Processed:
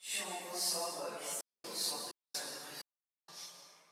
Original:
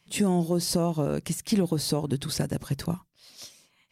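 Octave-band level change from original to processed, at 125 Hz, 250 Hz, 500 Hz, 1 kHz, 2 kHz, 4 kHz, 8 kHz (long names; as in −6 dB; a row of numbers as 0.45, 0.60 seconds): −35.0, −28.0, −15.5, −8.0, −5.0, −4.5, −4.5 decibels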